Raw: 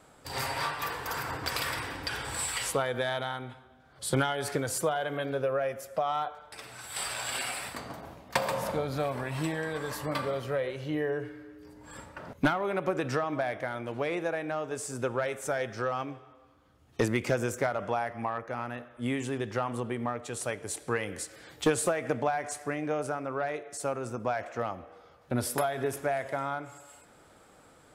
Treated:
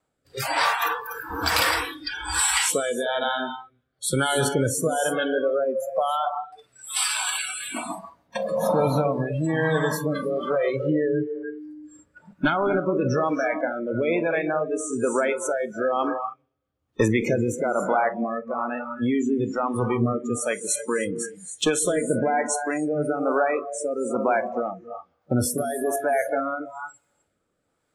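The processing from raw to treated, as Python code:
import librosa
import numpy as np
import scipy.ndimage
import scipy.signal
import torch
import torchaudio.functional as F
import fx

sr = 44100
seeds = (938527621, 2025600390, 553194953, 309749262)

p1 = fx.over_compress(x, sr, threshold_db=-32.0, ratio=-0.5)
p2 = x + F.gain(torch.from_numpy(p1), -2.5).numpy()
p3 = fx.rev_gated(p2, sr, seeds[0], gate_ms=330, shape='rising', drr_db=5.5)
p4 = fx.rotary(p3, sr, hz=1.1)
p5 = fx.noise_reduce_blind(p4, sr, reduce_db=27)
y = F.gain(torch.from_numpy(p5), 6.0).numpy()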